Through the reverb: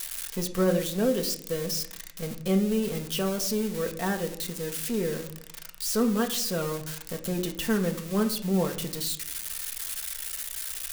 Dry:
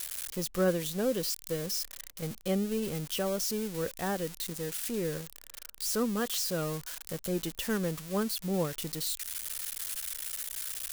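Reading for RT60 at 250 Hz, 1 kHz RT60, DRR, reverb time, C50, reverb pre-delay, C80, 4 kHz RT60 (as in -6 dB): 0.95 s, 0.60 s, 3.0 dB, 0.70 s, 12.5 dB, 4 ms, 15.5 dB, 0.40 s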